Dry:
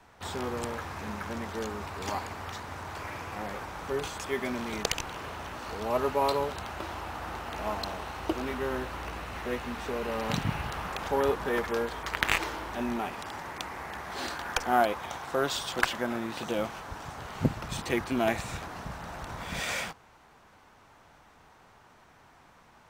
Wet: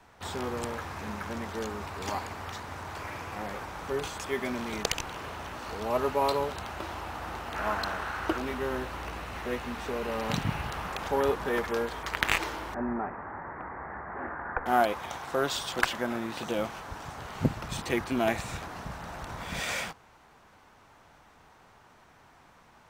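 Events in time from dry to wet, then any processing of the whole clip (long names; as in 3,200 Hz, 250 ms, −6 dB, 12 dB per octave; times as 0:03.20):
0:07.55–0:08.38: parametric band 1,500 Hz +10.5 dB 0.71 octaves
0:12.74–0:14.66: Butterworth low-pass 1,900 Hz 48 dB per octave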